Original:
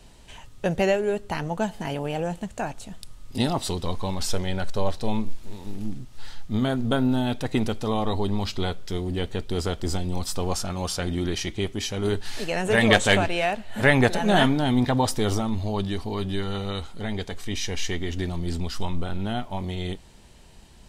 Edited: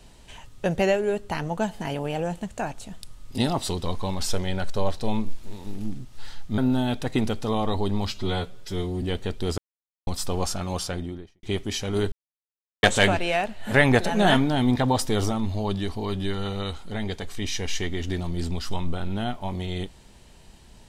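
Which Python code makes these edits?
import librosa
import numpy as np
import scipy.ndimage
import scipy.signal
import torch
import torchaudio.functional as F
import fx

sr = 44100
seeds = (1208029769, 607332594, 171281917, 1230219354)

y = fx.studio_fade_out(x, sr, start_s=10.81, length_s=0.71)
y = fx.edit(y, sr, fx.cut(start_s=6.58, length_s=0.39),
    fx.stretch_span(start_s=8.51, length_s=0.6, factor=1.5),
    fx.silence(start_s=9.67, length_s=0.49),
    fx.silence(start_s=12.21, length_s=0.71), tone=tone)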